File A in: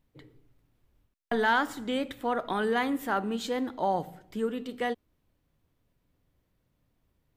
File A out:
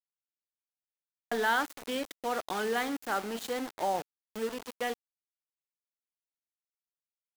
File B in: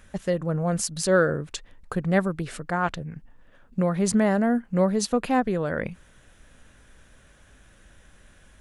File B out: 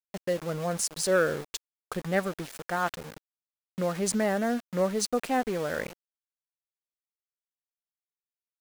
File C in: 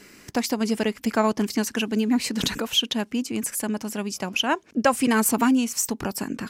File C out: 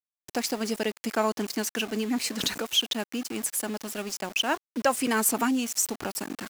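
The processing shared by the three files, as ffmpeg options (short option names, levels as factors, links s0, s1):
-af "bandreject=f=1000:w=15,acontrast=76,aeval=exprs='val(0)*gte(abs(val(0)),0.0473)':c=same,bass=f=250:g=-8,treble=f=4000:g=2,volume=0.355"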